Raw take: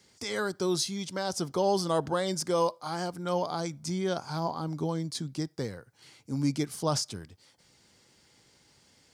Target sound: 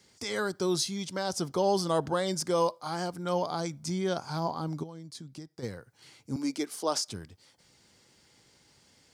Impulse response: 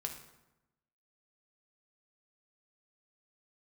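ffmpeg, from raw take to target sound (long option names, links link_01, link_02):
-filter_complex "[0:a]asplit=3[link_01][link_02][link_03];[link_01]afade=type=out:start_time=4.82:duration=0.02[link_04];[link_02]acompressor=threshold=-42dB:ratio=5,afade=type=in:start_time=4.82:duration=0.02,afade=type=out:start_time=5.62:duration=0.02[link_05];[link_03]afade=type=in:start_time=5.62:duration=0.02[link_06];[link_04][link_05][link_06]amix=inputs=3:normalize=0,asettb=1/sr,asplit=3[link_07][link_08][link_09];[link_07]atrim=end=6.364[link_10];[link_08]atrim=start=6.36:end=7.08,asetpts=PTS-STARTPTS,afade=type=in:duration=0.004:curve=qsin,afade=type=out:start_time=0.716:duration=0.004:curve=qsin,highpass=frequency=280:width=0.5412,highpass=frequency=280:width=1.3066[link_11];[link_09]atrim=start=7.076[link_12];[link_10][link_11]acrossfade=duration=0.004:curve1=hsin:curve2=qsin[link_13];[link_13][link_12]acrossfade=duration=0.004:curve1=qsin:curve2=hsin"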